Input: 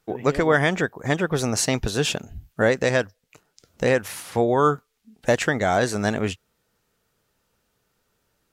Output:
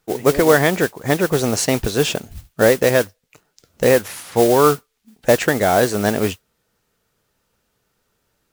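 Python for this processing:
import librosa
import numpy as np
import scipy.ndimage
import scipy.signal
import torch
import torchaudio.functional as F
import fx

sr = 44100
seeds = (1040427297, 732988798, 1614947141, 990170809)

y = fx.dynamic_eq(x, sr, hz=440.0, q=0.77, threshold_db=-31.0, ratio=4.0, max_db=5)
y = fx.mod_noise(y, sr, seeds[0], snr_db=14)
y = y * 10.0 ** (2.0 / 20.0)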